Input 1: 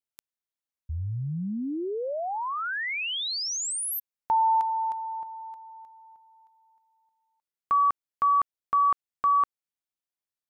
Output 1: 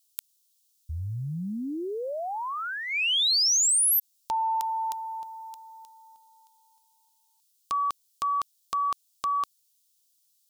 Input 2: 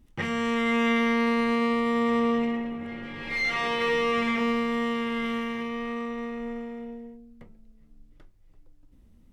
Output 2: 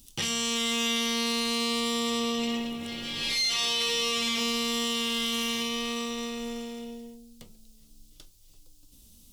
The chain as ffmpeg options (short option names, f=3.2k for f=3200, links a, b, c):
-af "aexciter=amount=10.4:drive=7.7:freq=3k,acompressor=threshold=-23dB:ratio=4:attack=0.78:release=58:knee=1:detection=peak,volume=-1.5dB"